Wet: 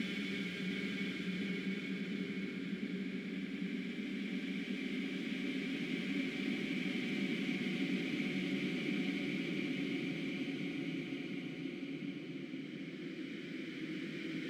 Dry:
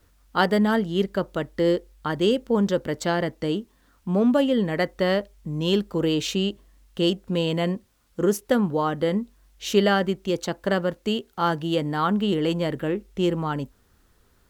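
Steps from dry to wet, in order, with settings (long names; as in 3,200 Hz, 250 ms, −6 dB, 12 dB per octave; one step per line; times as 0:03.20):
high-pass filter 76 Hz 12 dB per octave
treble cut that deepens with the level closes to 1,100 Hz, closed at −21.5 dBFS
parametric band 710 Hz −13 dB 2 octaves
wrap-around overflow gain 23.5 dB
extreme stretch with random phases 49×, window 0.25 s, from 0:01.04
soft clipping −25 dBFS, distortion −19 dB
formant filter i
tape delay 707 ms, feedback 73%, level −4 dB, low-pass 2,400 Hz
level +9 dB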